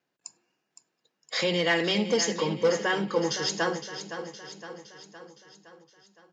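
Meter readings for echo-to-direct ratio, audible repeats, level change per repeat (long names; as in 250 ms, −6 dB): −9.0 dB, 5, −5.0 dB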